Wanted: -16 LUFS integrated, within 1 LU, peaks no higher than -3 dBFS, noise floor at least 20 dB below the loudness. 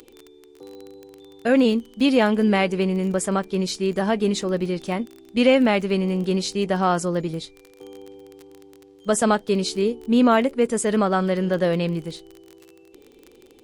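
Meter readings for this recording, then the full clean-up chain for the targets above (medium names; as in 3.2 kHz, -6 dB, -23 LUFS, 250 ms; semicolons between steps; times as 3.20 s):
tick rate 23 per s; loudness -21.5 LUFS; peak level -5.0 dBFS; loudness target -16.0 LUFS
-> de-click; trim +5.5 dB; peak limiter -3 dBFS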